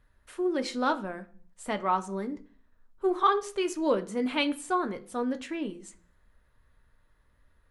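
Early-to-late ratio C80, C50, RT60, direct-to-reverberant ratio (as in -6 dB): 21.5 dB, 17.0 dB, 0.45 s, 8.0 dB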